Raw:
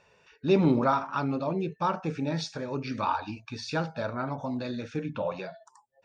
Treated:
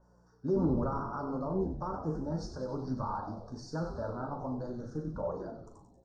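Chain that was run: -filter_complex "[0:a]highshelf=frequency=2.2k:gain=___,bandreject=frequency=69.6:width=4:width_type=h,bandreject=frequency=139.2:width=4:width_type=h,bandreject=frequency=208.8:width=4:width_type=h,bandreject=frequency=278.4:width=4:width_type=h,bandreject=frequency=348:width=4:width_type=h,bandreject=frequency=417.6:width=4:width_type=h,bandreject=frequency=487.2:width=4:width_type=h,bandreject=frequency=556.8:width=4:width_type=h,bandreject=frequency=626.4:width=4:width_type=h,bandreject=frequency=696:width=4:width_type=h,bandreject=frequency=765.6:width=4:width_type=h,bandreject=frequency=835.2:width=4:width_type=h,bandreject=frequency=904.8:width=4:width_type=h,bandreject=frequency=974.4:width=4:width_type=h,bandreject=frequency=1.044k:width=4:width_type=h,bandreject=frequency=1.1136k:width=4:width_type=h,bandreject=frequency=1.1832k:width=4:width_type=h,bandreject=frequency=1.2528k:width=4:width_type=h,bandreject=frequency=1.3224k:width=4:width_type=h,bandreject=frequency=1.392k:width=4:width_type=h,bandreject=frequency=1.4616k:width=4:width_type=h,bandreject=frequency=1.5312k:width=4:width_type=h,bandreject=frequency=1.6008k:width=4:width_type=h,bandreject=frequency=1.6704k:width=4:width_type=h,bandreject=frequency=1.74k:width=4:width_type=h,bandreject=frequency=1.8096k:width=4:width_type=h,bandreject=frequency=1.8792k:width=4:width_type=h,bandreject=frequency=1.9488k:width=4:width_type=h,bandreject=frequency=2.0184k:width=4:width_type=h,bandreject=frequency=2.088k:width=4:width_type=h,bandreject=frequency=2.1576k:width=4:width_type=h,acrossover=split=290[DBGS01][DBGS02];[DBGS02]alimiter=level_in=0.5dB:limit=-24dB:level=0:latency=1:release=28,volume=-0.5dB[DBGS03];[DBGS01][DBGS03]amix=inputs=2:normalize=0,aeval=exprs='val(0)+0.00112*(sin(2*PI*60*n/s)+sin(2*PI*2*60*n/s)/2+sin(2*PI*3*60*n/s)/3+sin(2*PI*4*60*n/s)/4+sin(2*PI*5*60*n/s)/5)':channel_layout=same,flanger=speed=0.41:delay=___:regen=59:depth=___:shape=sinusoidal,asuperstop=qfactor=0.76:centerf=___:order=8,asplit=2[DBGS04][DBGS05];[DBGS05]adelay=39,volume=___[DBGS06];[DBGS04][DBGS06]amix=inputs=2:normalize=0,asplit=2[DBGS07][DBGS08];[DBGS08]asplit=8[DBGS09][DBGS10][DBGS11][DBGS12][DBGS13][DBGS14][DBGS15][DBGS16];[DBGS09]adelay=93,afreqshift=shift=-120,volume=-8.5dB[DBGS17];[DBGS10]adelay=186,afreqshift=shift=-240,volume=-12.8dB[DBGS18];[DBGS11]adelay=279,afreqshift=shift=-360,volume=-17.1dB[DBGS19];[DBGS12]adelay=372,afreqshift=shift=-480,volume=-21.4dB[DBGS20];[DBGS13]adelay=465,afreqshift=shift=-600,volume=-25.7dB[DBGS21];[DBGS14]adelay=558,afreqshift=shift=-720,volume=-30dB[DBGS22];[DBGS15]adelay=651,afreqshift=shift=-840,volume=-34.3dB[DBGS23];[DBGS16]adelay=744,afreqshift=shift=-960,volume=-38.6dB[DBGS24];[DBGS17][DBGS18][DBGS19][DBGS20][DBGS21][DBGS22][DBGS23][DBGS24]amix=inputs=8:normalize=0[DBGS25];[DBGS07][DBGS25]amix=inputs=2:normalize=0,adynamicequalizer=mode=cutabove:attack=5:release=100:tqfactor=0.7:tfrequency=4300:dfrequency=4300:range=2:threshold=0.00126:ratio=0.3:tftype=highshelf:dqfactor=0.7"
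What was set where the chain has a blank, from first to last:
-4, 5.4, 6.5, 2700, -9dB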